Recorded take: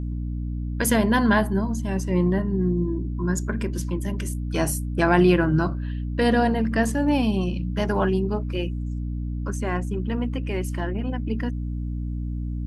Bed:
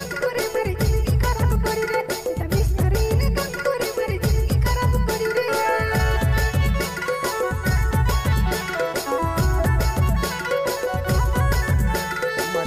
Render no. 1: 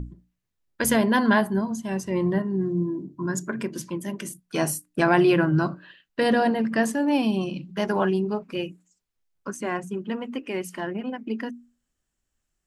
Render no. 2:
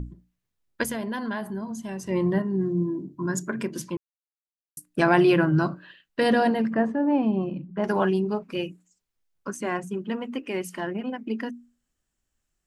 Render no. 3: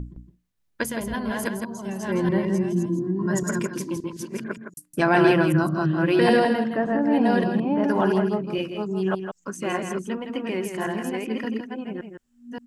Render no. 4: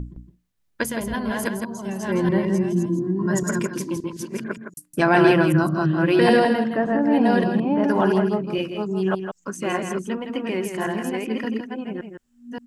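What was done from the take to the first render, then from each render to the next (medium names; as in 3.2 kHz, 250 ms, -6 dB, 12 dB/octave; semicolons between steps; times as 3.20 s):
hum notches 60/120/180/240/300 Hz
0.83–2.09 s: compression 2.5:1, threshold -32 dBFS; 3.97–4.77 s: mute; 6.73–7.84 s: low-pass 1.3 kHz
chunks repeated in reverse 572 ms, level -2 dB; delay 163 ms -7.5 dB
trim +2 dB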